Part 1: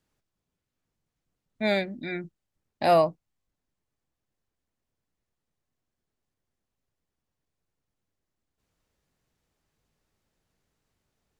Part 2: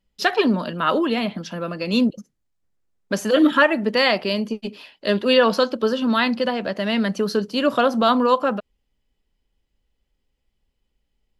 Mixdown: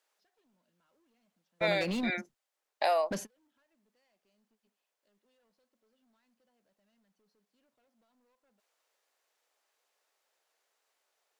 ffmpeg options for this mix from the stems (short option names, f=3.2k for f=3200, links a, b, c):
-filter_complex "[0:a]highpass=f=510:w=0.5412,highpass=f=510:w=1.3066,acompressor=threshold=-28dB:ratio=6,volume=2.5dB,asplit=2[a][b];[1:a]bandreject=f=1.2k:w=6,alimiter=limit=-15dB:level=0:latency=1:release=231,asoftclip=type=hard:threshold=-23.5dB,volume=-6dB[c];[b]apad=whole_len=502334[d];[c][d]sidechaingate=range=-42dB:threshold=-53dB:ratio=16:detection=peak[e];[a][e]amix=inputs=2:normalize=0"